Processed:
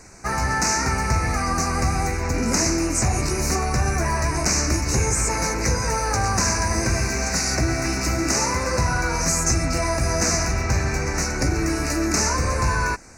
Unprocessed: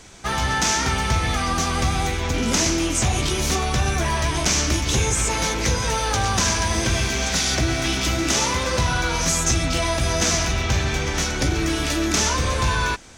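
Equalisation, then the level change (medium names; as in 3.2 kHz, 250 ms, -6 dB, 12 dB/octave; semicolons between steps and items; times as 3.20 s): Butterworth band-stop 3.3 kHz, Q 1.5; 0.0 dB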